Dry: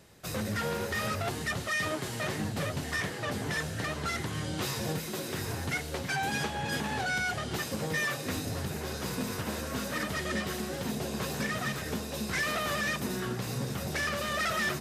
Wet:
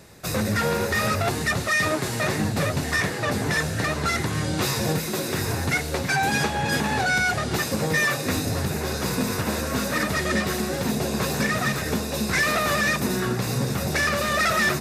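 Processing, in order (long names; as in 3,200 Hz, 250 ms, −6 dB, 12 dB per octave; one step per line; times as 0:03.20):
notch filter 3,100 Hz, Q 8
level +9 dB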